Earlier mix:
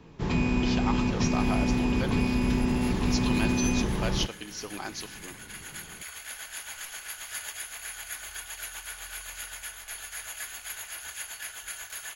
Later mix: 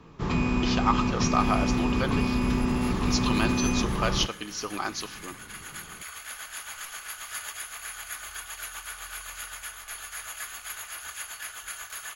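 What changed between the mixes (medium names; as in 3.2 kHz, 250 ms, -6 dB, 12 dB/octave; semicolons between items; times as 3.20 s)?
speech +4.0 dB; master: add peaking EQ 1.2 kHz +10 dB 0.31 oct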